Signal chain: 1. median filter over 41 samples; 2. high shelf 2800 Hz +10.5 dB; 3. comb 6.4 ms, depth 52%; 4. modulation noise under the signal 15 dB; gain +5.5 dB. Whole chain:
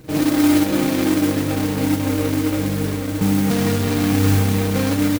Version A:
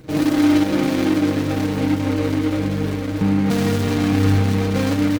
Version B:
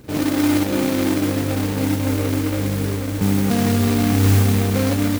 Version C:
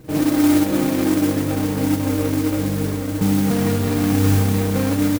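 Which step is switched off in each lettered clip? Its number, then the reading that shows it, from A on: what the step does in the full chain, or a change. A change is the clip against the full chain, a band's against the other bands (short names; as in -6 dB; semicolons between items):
4, 8 kHz band -7.0 dB; 3, 125 Hz band +2.5 dB; 2, 4 kHz band -2.5 dB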